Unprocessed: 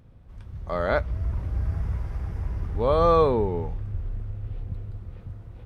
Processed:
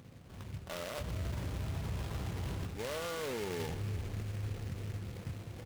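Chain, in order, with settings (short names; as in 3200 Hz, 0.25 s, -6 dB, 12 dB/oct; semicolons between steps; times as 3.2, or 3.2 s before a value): HPF 130 Hz 12 dB/oct; reverse; compressor 6:1, threshold -34 dBFS, peak gain reduction 17.5 dB; reverse; limiter -34 dBFS, peak gain reduction 11.5 dB; sample-rate reducer 2600 Hz, jitter 0%; on a send: echo 0.378 s -15.5 dB; on the sum: noise-modulated delay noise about 1900 Hz, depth 0.095 ms; gain +3.5 dB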